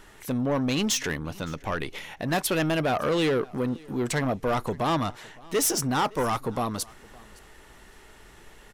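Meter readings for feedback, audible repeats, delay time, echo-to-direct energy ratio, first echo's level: repeats not evenly spaced, 1, 564 ms, −24.0 dB, −24.0 dB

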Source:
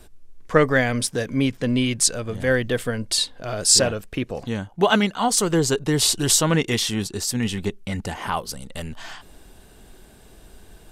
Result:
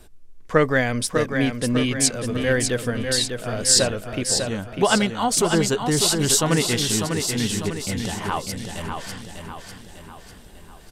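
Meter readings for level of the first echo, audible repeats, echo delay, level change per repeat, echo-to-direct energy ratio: −6.0 dB, 5, 598 ms, −6.0 dB, −5.0 dB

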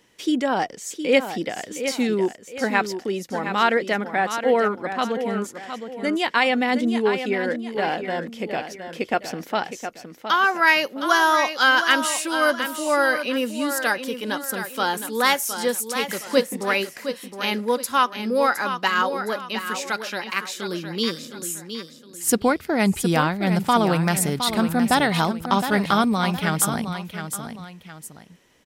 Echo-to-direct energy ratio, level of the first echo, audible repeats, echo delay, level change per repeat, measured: −8.5 dB, −9.0 dB, 2, 714 ms, −9.0 dB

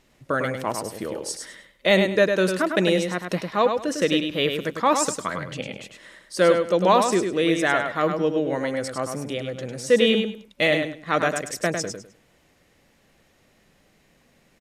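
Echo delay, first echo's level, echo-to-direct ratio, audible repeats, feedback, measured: 102 ms, −6.0 dB, −6.0 dB, 3, 23%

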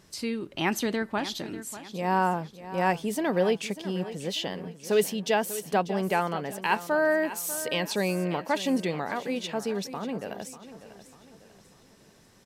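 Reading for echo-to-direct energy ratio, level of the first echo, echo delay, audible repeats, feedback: −13.0 dB, −14.0 dB, 593 ms, 3, 41%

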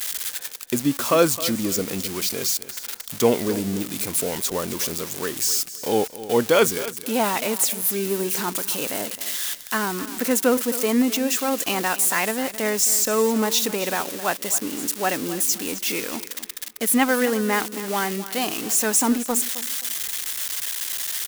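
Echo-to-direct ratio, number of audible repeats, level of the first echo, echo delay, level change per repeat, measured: −14.5 dB, 2, −15.0 dB, 264 ms, −11.5 dB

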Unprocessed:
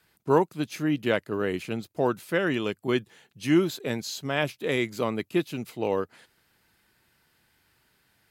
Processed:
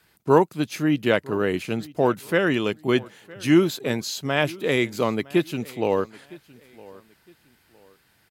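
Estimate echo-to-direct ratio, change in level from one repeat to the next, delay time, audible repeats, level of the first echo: −21.5 dB, −10.5 dB, 961 ms, 2, −22.0 dB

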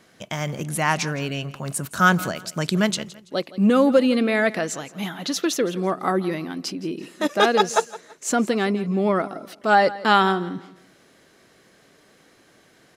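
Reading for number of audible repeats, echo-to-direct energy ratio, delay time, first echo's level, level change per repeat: 2, −17.5 dB, 166 ms, −18.0 dB, −10.0 dB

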